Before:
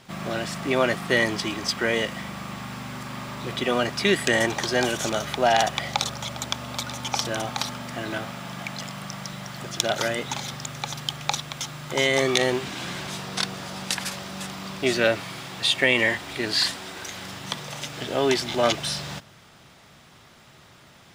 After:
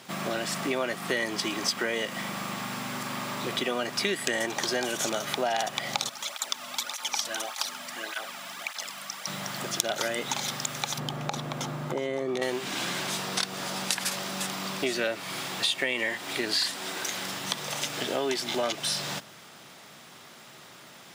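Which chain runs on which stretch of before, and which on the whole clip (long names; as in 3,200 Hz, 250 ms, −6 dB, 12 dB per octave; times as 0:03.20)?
0:06.09–0:09.27: high-pass filter 1,100 Hz 6 dB per octave + through-zero flanger with one copy inverted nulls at 1.7 Hz, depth 2.6 ms
0:10.98–0:12.42: tilt shelving filter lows +10 dB, about 1,400 Hz + downward compressor, threshold −22 dBFS
whole clip: downward compressor 4 to 1, threshold −29 dBFS; high-pass filter 200 Hz 12 dB per octave; high-shelf EQ 7,500 Hz +6.5 dB; level +2.5 dB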